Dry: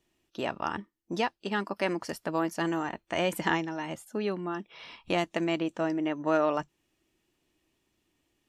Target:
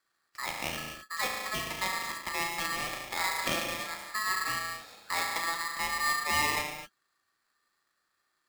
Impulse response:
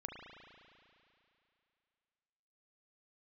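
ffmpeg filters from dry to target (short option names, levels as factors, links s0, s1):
-filter_complex "[0:a]asettb=1/sr,asplit=3[s0][s1][s2];[s0]atrim=end=3.864[s3];[s1]atrim=start=3.86:end=4.52,asetpts=PTS-STARTPTS,afade=t=in:d=0.004:c=qsin,afade=t=out:st=0.656:d=0.004:c=qsin,equalizer=f=120:t=o:w=2.1:g=9[s4];[s2]atrim=start=4.516[s5];[s3][s4]acrossfade=d=0.004:c1=hsin:c2=qsin[s6];[s6][s5]acrossfade=d=0.004:c1=qsin:c2=hsin[s7];[1:a]atrim=start_sample=2205,afade=t=out:st=0.32:d=0.01,atrim=end_sample=14553[s8];[s7][s8]afir=irnorm=-1:irlink=0,aeval=exprs='val(0)*sgn(sin(2*PI*1500*n/s))':c=same"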